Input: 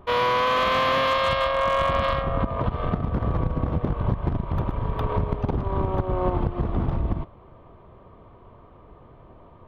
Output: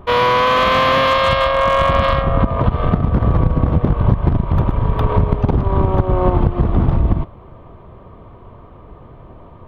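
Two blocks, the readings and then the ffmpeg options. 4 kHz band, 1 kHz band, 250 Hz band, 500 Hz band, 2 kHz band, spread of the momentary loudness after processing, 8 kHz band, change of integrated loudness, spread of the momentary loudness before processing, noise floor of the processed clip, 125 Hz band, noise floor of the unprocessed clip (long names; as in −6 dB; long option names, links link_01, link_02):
+7.0 dB, +7.5 dB, +9.5 dB, +7.5 dB, +7.5 dB, 5 LU, can't be measured, +8.5 dB, 7 LU, −41 dBFS, +10.5 dB, −50 dBFS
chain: -af "bass=frequency=250:gain=3,treble=frequency=4000:gain=-1,volume=7.5dB"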